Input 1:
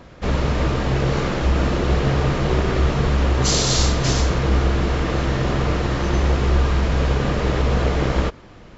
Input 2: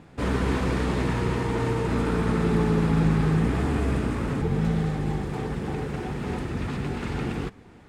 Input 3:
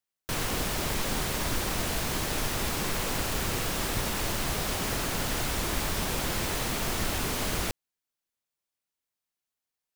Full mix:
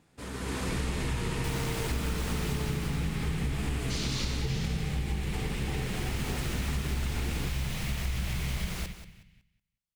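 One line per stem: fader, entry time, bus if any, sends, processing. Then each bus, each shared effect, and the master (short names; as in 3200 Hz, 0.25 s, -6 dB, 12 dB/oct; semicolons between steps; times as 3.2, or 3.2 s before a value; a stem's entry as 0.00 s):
-9.0 dB, 0.45 s, no send, echo send -6 dB, elliptic band-stop 190–2100 Hz; LPF 2800 Hz 12 dB/oct
-16.5 dB, 0.00 s, no send, no echo send, high shelf 7100 Hz +8.5 dB; AGC gain up to 11.5 dB
2.55 s -7.5 dB -> 3.32 s -20 dB -> 5.6 s -20 dB -> 6.23 s -10 dB, 1.15 s, no send, echo send -12.5 dB, high shelf 5300 Hz -9.5 dB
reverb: off
echo: feedback echo 0.184 s, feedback 22%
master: high shelf 2800 Hz +10 dB; compressor, threshold -27 dBFS, peak gain reduction 7 dB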